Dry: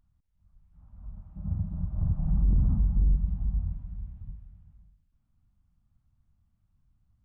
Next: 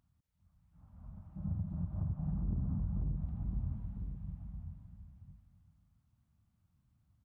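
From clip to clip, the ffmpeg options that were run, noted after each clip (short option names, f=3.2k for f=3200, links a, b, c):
-af "highpass=84,acompressor=threshold=-33dB:ratio=4,aecho=1:1:1003:0.398"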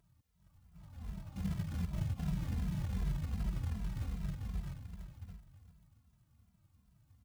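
-filter_complex "[0:a]acompressor=threshold=-38dB:ratio=8,acrusher=bits=4:mode=log:mix=0:aa=0.000001,asplit=2[a][b];[b]adelay=2.6,afreqshift=-2.6[c];[a][c]amix=inputs=2:normalize=1,volume=8.5dB"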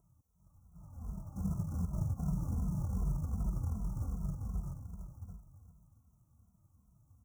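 -af "asuperstop=centerf=2800:order=20:qfactor=0.66,volume=1.5dB"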